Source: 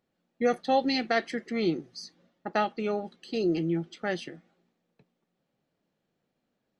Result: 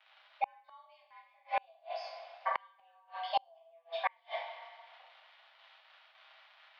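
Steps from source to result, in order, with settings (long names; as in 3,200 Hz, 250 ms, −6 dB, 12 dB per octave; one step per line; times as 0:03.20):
surface crackle 160 per second −43 dBFS
single-sideband voice off tune +330 Hz 310–3,500 Hz
coupled-rooms reverb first 0.59 s, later 2.1 s, from −18 dB, DRR −6 dB
gate with flip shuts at −19 dBFS, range −39 dB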